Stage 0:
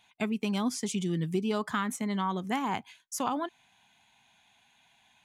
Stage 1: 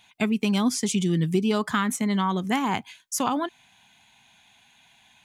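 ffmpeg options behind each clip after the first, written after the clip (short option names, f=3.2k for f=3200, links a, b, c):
-af "equalizer=f=740:t=o:w=2.2:g=-3.5,volume=8dB"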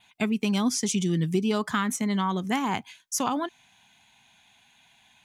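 -af "adynamicequalizer=threshold=0.00398:dfrequency=5900:dqfactor=4:tfrequency=5900:tqfactor=4:attack=5:release=100:ratio=0.375:range=3:mode=boostabove:tftype=bell,volume=-2dB"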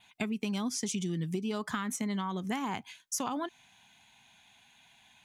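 -af "acompressor=threshold=-29dB:ratio=6,volume=-1.5dB"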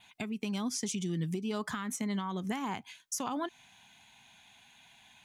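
-af "alimiter=level_in=2.5dB:limit=-24dB:level=0:latency=1:release=452,volume=-2.5dB,volume=2dB"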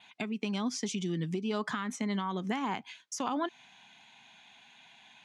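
-af "highpass=180,lowpass=5.1k,volume=3dB"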